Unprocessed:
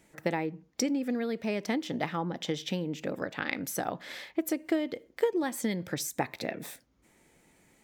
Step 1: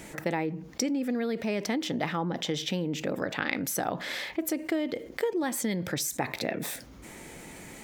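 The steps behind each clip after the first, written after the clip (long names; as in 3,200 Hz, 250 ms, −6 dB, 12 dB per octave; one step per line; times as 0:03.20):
envelope flattener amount 50%
level −3 dB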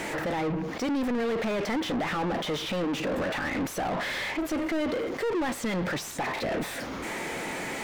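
brickwall limiter −22 dBFS, peak gain reduction 10.5 dB
mid-hump overdrive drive 32 dB, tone 1,700 Hz, clips at −22 dBFS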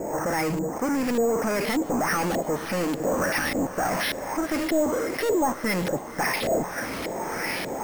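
auto-filter low-pass saw up 1.7 Hz 510–4,000 Hz
decimation without filtering 6×
feedback delay with all-pass diffusion 524 ms, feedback 49%, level −15 dB
level +2 dB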